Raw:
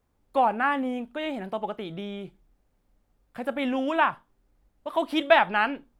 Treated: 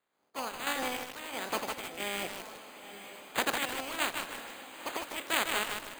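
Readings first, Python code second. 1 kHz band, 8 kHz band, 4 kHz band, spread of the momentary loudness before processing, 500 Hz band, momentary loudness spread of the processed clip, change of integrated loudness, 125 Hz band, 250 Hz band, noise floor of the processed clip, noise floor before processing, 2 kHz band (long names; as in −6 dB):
−10.5 dB, can't be measured, +0.5 dB, 16 LU, −11.5 dB, 15 LU, −8.0 dB, −9.0 dB, −13.0 dB, −76 dBFS, −71 dBFS, −5.5 dB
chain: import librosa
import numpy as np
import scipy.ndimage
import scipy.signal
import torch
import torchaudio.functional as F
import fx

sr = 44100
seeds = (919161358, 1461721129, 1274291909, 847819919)

p1 = fx.spec_clip(x, sr, under_db=26)
p2 = fx.recorder_agc(p1, sr, target_db=-9.0, rise_db_per_s=5.9, max_gain_db=30)
p3 = fx.bandpass_edges(p2, sr, low_hz=240.0, high_hz=3300.0)
p4 = np.repeat(p3[::8], 8)[:len(p3)]
p5 = fx.quant_float(p4, sr, bits=2)
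p6 = fx.chopper(p5, sr, hz=1.5, depth_pct=60, duty_pct=45)
p7 = p6 + fx.echo_diffused(p6, sr, ms=937, feedback_pct=53, wet_db=-11.0, dry=0)
p8 = fx.echo_crushed(p7, sr, ms=153, feedback_pct=55, bits=5, wet_db=-3.5)
y = p8 * librosa.db_to_amplitude(-8.0)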